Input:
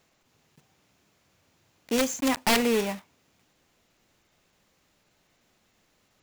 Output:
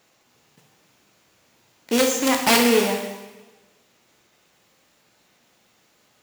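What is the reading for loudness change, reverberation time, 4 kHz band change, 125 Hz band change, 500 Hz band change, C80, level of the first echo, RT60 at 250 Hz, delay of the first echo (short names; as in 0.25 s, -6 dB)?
+6.5 dB, 1.2 s, +7.0 dB, +4.0 dB, +7.0 dB, 7.5 dB, none, 1.3 s, none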